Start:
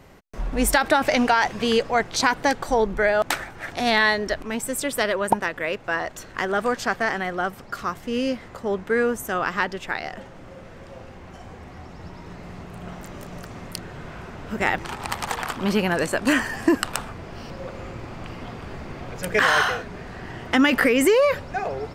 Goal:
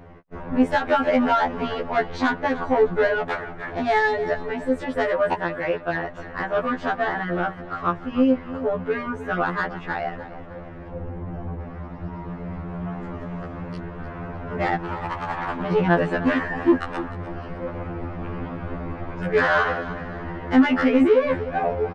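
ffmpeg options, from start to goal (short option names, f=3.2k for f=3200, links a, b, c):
-filter_complex "[0:a]asettb=1/sr,asplit=3[a][b][c];[a]atrim=end=10.904[d];[b]atrim=start=10.9:end=11.61,asetpts=PTS-STARTPTS,afade=t=in:d=0.004:c=qsin,afade=t=out:st=0.706:d=0.004:c=qsin,tiltshelf=f=740:g=5.5[e];[c]atrim=start=11.606[f];[d][e]acrossfade=d=0.004:c1=hsin:c2=qsin[g];[g][f]acrossfade=d=0.004:c1=qsin:c2=hsin,asplit=2[h][i];[i]alimiter=limit=-14dB:level=0:latency=1:release=393,volume=-3dB[j];[h][j]amix=inputs=2:normalize=0,lowpass=1.6k,asoftclip=type=tanh:threshold=-12dB,asplit=2[k][l];[l]aecho=0:1:303|606|909|1212:0.178|0.0694|0.027|0.0105[m];[k][m]amix=inputs=2:normalize=0,afftfilt=real='re*2*eq(mod(b,4),0)':imag='im*2*eq(mod(b,4),0)':win_size=2048:overlap=0.75,volume=2dB"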